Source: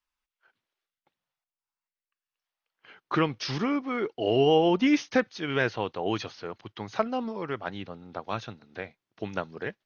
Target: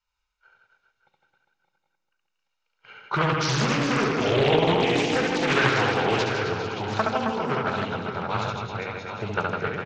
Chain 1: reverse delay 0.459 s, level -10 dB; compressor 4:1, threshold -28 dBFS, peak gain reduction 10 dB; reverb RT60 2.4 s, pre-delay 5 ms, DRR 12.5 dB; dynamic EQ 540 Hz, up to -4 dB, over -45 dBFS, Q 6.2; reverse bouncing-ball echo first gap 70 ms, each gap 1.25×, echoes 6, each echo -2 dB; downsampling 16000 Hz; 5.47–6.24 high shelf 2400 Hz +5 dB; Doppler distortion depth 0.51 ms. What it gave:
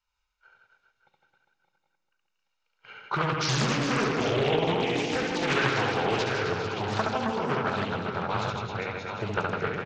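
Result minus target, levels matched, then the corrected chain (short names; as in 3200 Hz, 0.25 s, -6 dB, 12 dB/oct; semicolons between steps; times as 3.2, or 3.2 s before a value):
compressor: peak gain reduction +5 dB
reverse delay 0.459 s, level -10 dB; compressor 4:1, threshold -21 dBFS, peak gain reduction 5 dB; reverb RT60 2.4 s, pre-delay 5 ms, DRR 12.5 dB; dynamic EQ 540 Hz, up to -4 dB, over -45 dBFS, Q 6.2; reverse bouncing-ball echo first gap 70 ms, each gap 1.25×, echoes 6, each echo -2 dB; downsampling 16000 Hz; 5.47–6.24 high shelf 2400 Hz +5 dB; Doppler distortion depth 0.51 ms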